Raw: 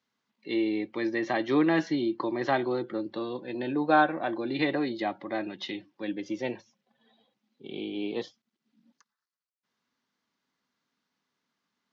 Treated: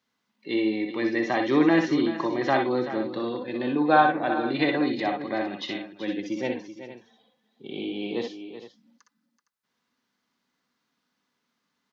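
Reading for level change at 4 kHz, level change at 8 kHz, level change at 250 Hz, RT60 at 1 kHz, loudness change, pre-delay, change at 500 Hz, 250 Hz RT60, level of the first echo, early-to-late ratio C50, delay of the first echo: +4.0 dB, n/a, +4.0 dB, none, +4.0 dB, none, +3.5 dB, none, -4.5 dB, none, 60 ms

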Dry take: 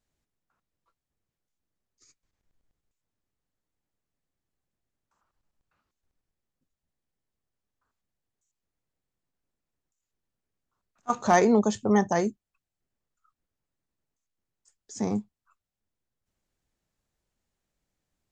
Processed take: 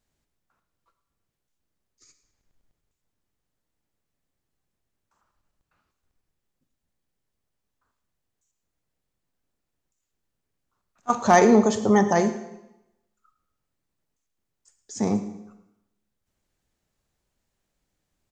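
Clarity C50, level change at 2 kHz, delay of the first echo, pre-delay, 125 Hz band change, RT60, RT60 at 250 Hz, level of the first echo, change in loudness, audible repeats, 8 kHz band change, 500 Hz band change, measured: 10.0 dB, +4.5 dB, 0.11 s, 34 ms, +4.0 dB, 0.90 s, 0.90 s, -18.5 dB, +4.5 dB, 1, n/a, +4.5 dB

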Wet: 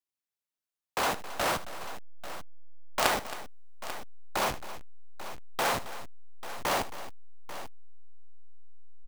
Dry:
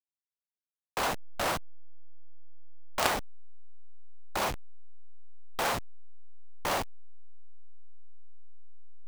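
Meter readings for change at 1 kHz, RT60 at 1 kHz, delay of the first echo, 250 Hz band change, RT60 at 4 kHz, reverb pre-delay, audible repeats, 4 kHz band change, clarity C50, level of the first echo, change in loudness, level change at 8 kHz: +2.0 dB, none, 77 ms, +1.0 dB, none, none, 3, +2.0 dB, none, -15.5 dB, 0.0 dB, +2.0 dB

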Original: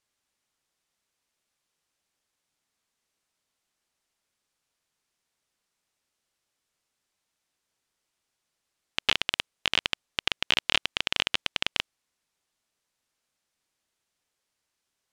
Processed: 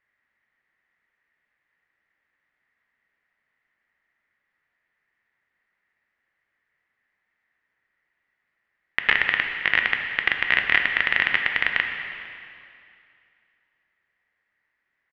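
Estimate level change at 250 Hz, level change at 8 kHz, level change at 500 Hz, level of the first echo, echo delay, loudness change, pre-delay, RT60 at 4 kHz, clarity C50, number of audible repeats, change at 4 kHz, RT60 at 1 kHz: +2.0 dB, under -15 dB, +2.0 dB, -22.0 dB, 0.455 s, +6.0 dB, 4 ms, 2.3 s, 5.0 dB, 1, -3.5 dB, 2.5 s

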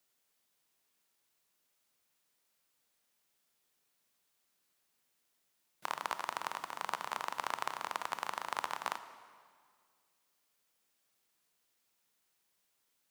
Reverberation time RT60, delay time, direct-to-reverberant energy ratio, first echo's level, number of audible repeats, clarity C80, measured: 2.0 s, none, 11.0 dB, none, none, 13.0 dB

